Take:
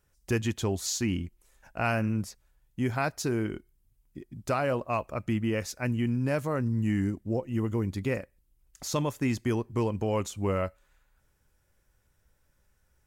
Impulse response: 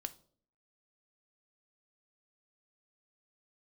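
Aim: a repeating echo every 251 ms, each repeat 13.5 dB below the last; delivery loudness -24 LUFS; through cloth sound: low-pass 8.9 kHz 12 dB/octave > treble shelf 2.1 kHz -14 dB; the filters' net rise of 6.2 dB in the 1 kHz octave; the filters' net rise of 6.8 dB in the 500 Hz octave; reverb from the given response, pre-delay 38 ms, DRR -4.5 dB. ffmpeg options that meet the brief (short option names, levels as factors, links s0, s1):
-filter_complex "[0:a]equalizer=f=500:t=o:g=7,equalizer=f=1000:t=o:g=9,aecho=1:1:251|502:0.211|0.0444,asplit=2[s0][s1];[1:a]atrim=start_sample=2205,adelay=38[s2];[s1][s2]afir=irnorm=-1:irlink=0,volume=2.24[s3];[s0][s3]amix=inputs=2:normalize=0,lowpass=8900,highshelf=f=2100:g=-14,volume=0.708"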